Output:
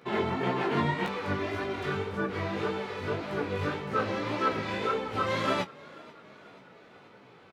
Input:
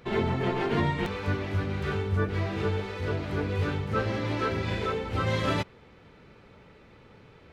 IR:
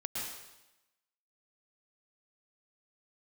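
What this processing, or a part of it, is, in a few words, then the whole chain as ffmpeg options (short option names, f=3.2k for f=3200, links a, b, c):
double-tracked vocal: -filter_complex "[0:a]highpass=170,asplit=2[a][b];[b]adelay=22,volume=-13.5dB[c];[a][c]amix=inputs=2:normalize=0,flanger=delay=15:depth=6.2:speed=1.8,equalizer=f=980:t=o:w=1.1:g=3.5,asettb=1/sr,asplit=3[d][e][f];[d]atrim=end=1.394[g];[e]atrim=start=1.39:end=1.86,asetpts=PTS-STARTPTS,afade=t=in:d=0.004:c=qsin,afade=t=out:st=0.466:d=0.004:c=qsin,aecho=1:1:2.9:0.82,atrim=end_sample=20727[h];[f]atrim=start=1.856[i];[g][h]acrossfade=d=0.004:c1=hsin:c2=qsin[j];[j][i]acrossfade=d=0.004:c1=qsin:c2=hsin,asplit=5[k][l][m][n][o];[l]adelay=486,afreqshift=46,volume=-22dB[p];[m]adelay=972,afreqshift=92,volume=-26.6dB[q];[n]adelay=1458,afreqshift=138,volume=-31.2dB[r];[o]adelay=1944,afreqshift=184,volume=-35.7dB[s];[k][p][q][r][s]amix=inputs=5:normalize=0,volume=2dB"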